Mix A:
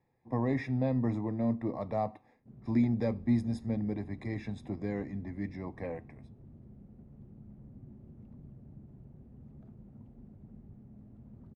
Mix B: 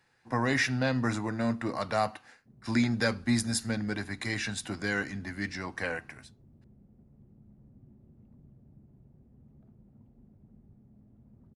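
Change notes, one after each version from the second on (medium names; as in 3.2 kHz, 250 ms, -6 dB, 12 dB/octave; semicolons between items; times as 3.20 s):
speech: remove boxcar filter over 30 samples; background -5.5 dB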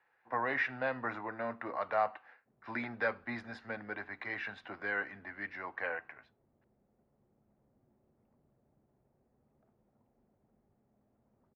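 speech: add distance through air 250 m; master: add three-band isolator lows -20 dB, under 450 Hz, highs -18 dB, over 2.8 kHz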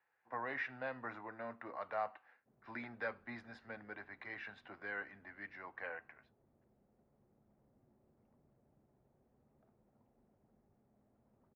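speech -8.0 dB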